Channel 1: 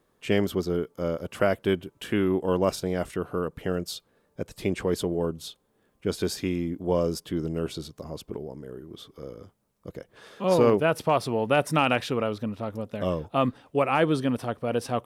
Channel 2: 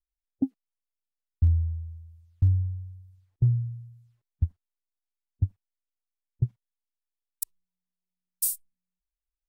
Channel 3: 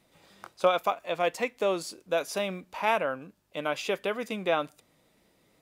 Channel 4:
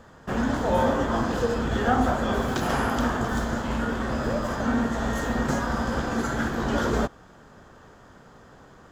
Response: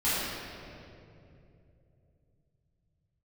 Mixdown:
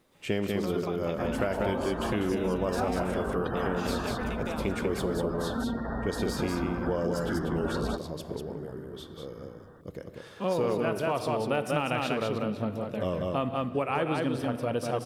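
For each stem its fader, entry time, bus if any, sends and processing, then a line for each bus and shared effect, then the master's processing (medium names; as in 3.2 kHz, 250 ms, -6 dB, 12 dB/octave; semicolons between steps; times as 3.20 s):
-2.0 dB, 0.00 s, send -22 dB, echo send -3.5 dB, de-esser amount 65%
mute
-4.0 dB, 0.00 s, no send, echo send -4 dB, compression 6:1, threshold -31 dBFS, peak gain reduction 13 dB
-6.0 dB, 0.90 s, no send, no echo send, spectral gate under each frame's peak -20 dB strong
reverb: on, RT60 2.8 s, pre-delay 5 ms
echo: delay 193 ms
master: compression 4:1, threshold -25 dBFS, peak gain reduction 8 dB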